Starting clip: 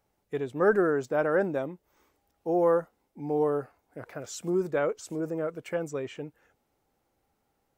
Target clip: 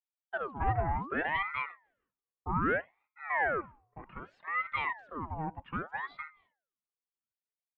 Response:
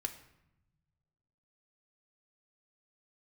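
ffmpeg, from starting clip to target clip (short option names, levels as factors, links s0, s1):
-af "aecho=1:1:2.6:0.79,agate=range=0.0224:threshold=0.00224:ratio=3:detection=peak,bandreject=f=210.5:t=h:w=4,bandreject=f=421:t=h:w=4,bandreject=f=631.5:t=h:w=4,asoftclip=type=tanh:threshold=0.178,highpass=130,equalizer=f=330:t=q:w=4:g=-8,equalizer=f=670:t=q:w=4:g=5,equalizer=f=1400:t=q:w=4:g=-10,lowpass=f=2000:w=0.5412,lowpass=f=2000:w=1.3066,aeval=exprs='val(0)*sin(2*PI*1000*n/s+1000*0.7/0.64*sin(2*PI*0.64*n/s))':c=same,volume=0.75"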